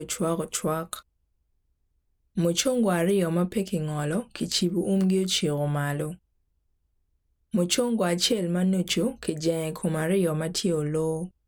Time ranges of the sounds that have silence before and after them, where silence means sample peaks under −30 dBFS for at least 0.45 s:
0:02.37–0:06.11

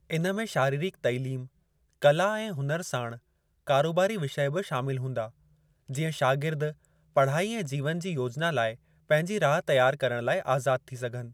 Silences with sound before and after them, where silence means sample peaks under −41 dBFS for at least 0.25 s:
0:01.46–0:02.02
0:03.17–0:03.67
0:05.28–0:05.90
0:06.72–0:07.16
0:08.75–0:09.10

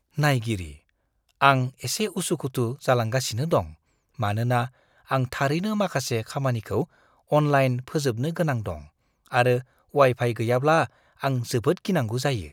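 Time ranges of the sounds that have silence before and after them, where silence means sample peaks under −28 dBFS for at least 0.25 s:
0:01.41–0:03.63
0:04.20–0:04.66
0:05.11–0:06.84
0:07.32–0:08.75
0:09.33–0:09.59
0:09.95–0:10.85

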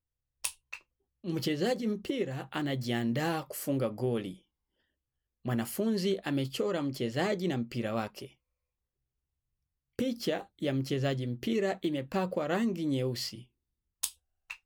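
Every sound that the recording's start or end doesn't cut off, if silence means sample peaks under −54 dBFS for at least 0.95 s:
0:05.45–0:08.32

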